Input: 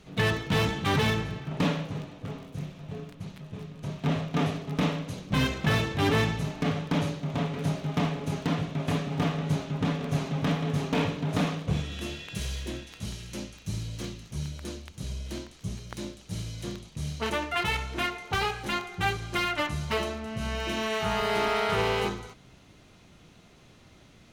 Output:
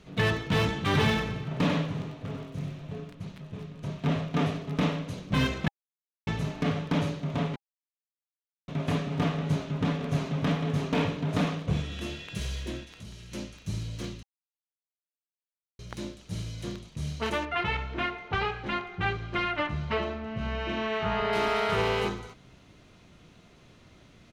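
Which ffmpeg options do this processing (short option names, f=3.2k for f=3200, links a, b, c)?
-filter_complex "[0:a]asplit=3[a][b][c];[a]afade=t=out:st=0.92:d=0.02[d];[b]aecho=1:1:95:0.562,afade=t=in:st=0.92:d=0.02,afade=t=out:st=2.88:d=0.02[e];[c]afade=t=in:st=2.88:d=0.02[f];[d][e][f]amix=inputs=3:normalize=0,asettb=1/sr,asplit=3[g][h][i];[g]atrim=end=12.844[j];[h]atrim=start=12.84:end=13.32,asetpts=PTS-STARTPTS,afade=t=in:d=0.004:c=qsin,afade=t=out:st=0.476:d=0.004:c=qsin,acompressor=threshold=-45dB:ratio=2:attack=3.2:release=140:knee=1:detection=peak[k];[i]atrim=start=13.316[l];[j][k]acrossfade=d=0.004:c1=hsin:c2=qsin[m];[m][l]acrossfade=d=0.004:c1=qsin:c2=hsin,asettb=1/sr,asplit=3[n][o][p];[n]atrim=end=17.454[q];[o]atrim=start=17.45:end=21.33,asetpts=PTS-STARTPTS,afade=t=in:d=0.004:c=qsin,afade=t=out:st=3.876:d=0.004:c=qsin,lowpass=3.1k[r];[p]atrim=start=21.326[s];[q][r]acrossfade=d=0.004:c1=hsin:c2=qsin[t];[t][s]acrossfade=d=0.004:c1=qsin:c2=hsin,asplit=7[u][v][w][x][y][z][aa];[u]atrim=end=5.68,asetpts=PTS-STARTPTS,afade=t=out:st=5.676:d=0.004:c=hsin[ab];[v]atrim=start=5.68:end=6.27,asetpts=PTS-STARTPTS,volume=0[ac];[w]atrim=start=6.27:end=7.56,asetpts=PTS-STARTPTS,afade=t=in:d=0.004:c=hsin,afade=t=out:st=1.286:d=0.004:c=hsin[ad];[x]atrim=start=7.56:end=8.68,asetpts=PTS-STARTPTS,volume=0[ae];[y]atrim=start=8.68:end=14.23,asetpts=PTS-STARTPTS,afade=t=in:d=0.004:c=hsin,afade=t=out:st=5.546:d=0.004:c=hsin[af];[z]atrim=start=14.23:end=15.79,asetpts=PTS-STARTPTS,volume=0[ag];[aa]atrim=start=15.79,asetpts=PTS-STARTPTS,afade=t=in:d=0.004:c=hsin[ah];[ab][ac][ad][ae][af][ag][ah]concat=n=7:v=0:a=1,highshelf=f=7k:g=-7,bandreject=f=810:w=18"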